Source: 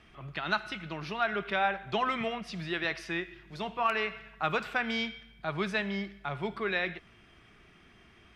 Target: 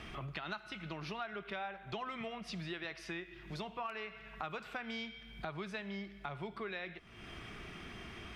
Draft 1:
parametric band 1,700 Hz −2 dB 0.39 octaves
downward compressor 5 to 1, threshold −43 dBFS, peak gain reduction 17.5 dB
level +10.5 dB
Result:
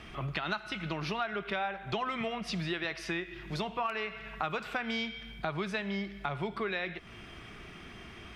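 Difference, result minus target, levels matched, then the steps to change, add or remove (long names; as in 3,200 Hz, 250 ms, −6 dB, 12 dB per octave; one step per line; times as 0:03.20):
downward compressor: peak gain reduction −8 dB
change: downward compressor 5 to 1, threshold −53 dBFS, peak gain reduction 25.5 dB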